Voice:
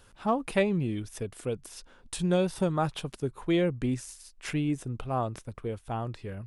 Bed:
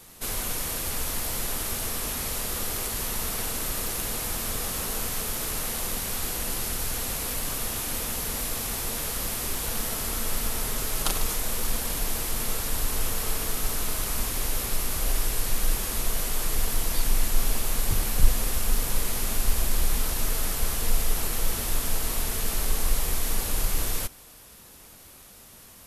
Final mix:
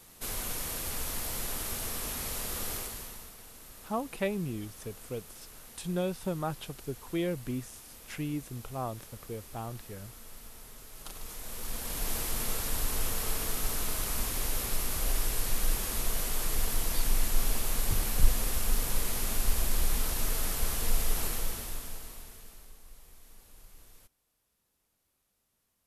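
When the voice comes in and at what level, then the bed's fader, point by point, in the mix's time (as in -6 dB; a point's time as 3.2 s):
3.65 s, -6.0 dB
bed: 2.74 s -5.5 dB
3.36 s -20.5 dB
10.91 s -20.5 dB
12.12 s -4 dB
21.27 s -4 dB
22.81 s -28.5 dB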